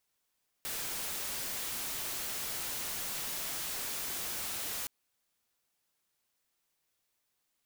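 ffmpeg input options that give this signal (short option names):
-f lavfi -i "anoisesrc=c=white:a=0.0231:d=4.22:r=44100:seed=1"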